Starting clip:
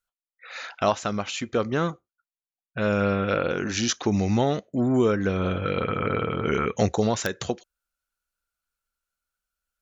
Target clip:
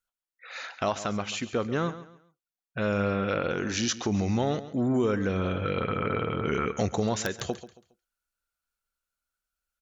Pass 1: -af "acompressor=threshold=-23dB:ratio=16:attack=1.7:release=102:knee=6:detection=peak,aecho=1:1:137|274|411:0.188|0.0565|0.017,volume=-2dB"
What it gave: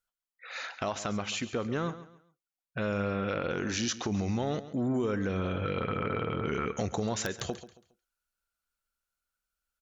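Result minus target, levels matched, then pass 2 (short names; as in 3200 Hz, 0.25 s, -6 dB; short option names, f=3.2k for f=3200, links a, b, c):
compressor: peak gain reduction +6 dB
-af "acompressor=threshold=-16.5dB:ratio=16:attack=1.7:release=102:knee=6:detection=peak,aecho=1:1:137|274|411:0.188|0.0565|0.017,volume=-2dB"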